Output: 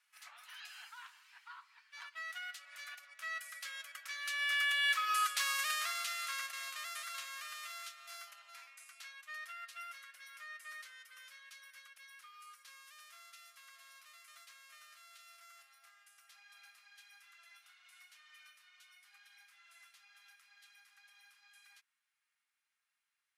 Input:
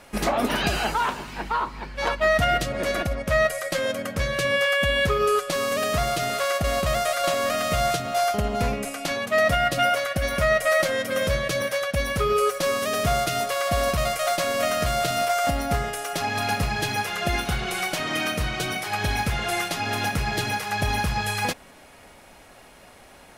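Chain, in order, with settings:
source passing by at 0:05.32, 9 m/s, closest 4.5 metres
inverse Chebyshev high-pass filter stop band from 290 Hz, stop band 70 dB
level −3.5 dB

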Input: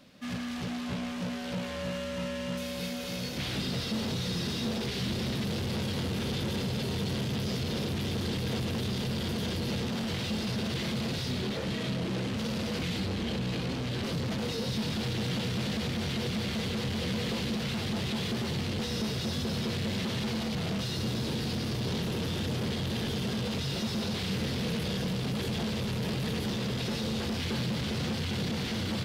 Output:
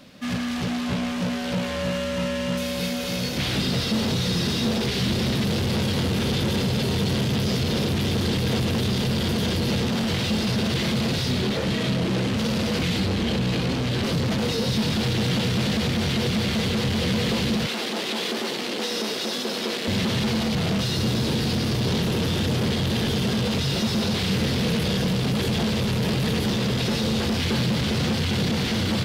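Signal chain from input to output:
0:17.66–0:19.88: high-pass filter 270 Hz 24 dB per octave
level +8.5 dB

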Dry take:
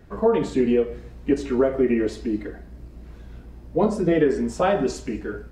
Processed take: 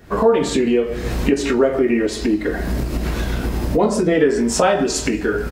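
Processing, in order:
camcorder AGC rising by 67 dB per second
spectral tilt +1.5 dB per octave
double-tracking delay 22 ms −11 dB
level +5 dB

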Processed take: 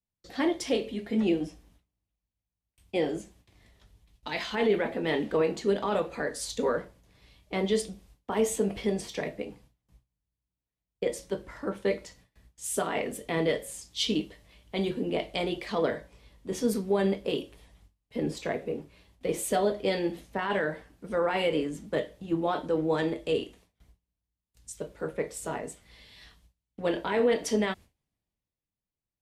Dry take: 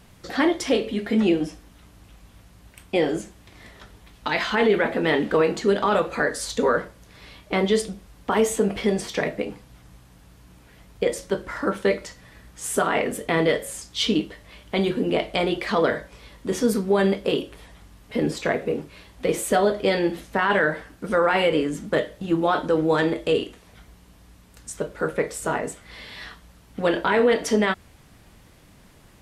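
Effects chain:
noise gate with hold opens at −38 dBFS
parametric band 1,400 Hz −6 dB 0.76 octaves
multiband upward and downward expander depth 40%
level −6.5 dB

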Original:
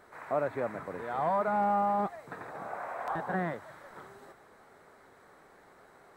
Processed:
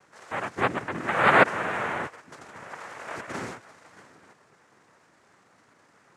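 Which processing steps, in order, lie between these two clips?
0:00.57–0:01.43: hollow resonant body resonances 250/620 Hz, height 14 dB → 18 dB, ringing for 25 ms
cochlear-implant simulation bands 3
level −2 dB

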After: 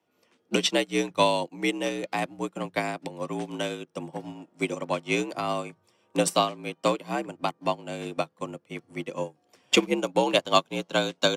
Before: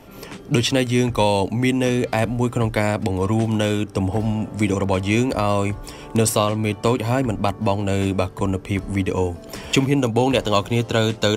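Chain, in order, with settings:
high-shelf EQ 2,700 Hz +6.5 dB
frequency shifter +62 Hz
high-pass filter 280 Hz 6 dB per octave
high-shelf EQ 7,700 Hz −12 dB
expander for the loud parts 2.5 to 1, over −34 dBFS

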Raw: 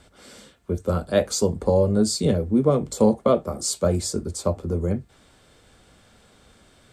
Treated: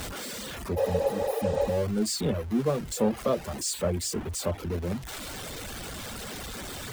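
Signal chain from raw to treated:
converter with a step at zero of −21.5 dBFS
healed spectral selection 0:00.80–0:01.68, 340–9,400 Hz after
reverb reduction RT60 0.8 s
level −8.5 dB

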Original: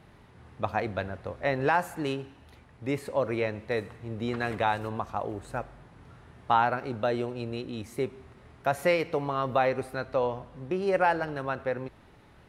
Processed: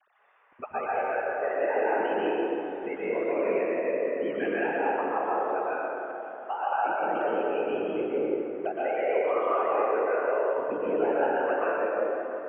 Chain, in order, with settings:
three sine waves on the formant tracks
brickwall limiter −21.5 dBFS, peak gain reduction 9 dB
downward compressor 4 to 1, threshold −32 dBFS, peak gain reduction 7 dB
random phases in short frames
dense smooth reverb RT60 3.5 s, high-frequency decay 0.5×, pre-delay 105 ms, DRR −8.5 dB

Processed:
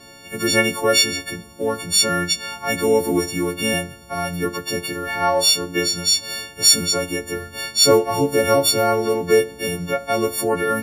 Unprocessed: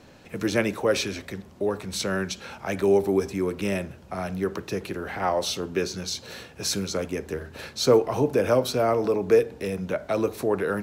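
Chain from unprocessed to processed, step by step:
every partial snapped to a pitch grid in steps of 4 semitones
spectral peaks only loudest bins 64
level +3.5 dB

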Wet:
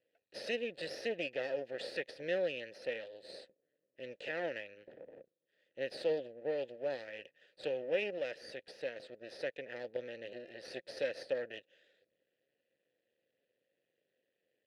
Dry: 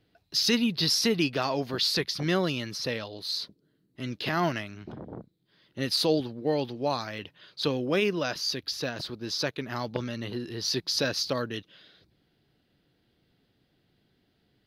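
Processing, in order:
half-wave rectification
formant filter e
level +4.5 dB

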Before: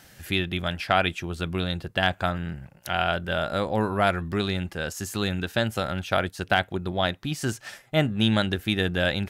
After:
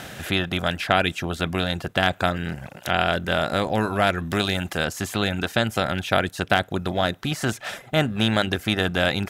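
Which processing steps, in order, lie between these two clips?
compressor on every frequency bin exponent 0.6
0:04.30–0:04.85: high-shelf EQ 4,800 Hz +6.5 dB
reverb reduction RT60 0.53 s
0:06.57–0:07.20: dynamic equaliser 2,400 Hz, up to −6 dB, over −38 dBFS, Q 1.6

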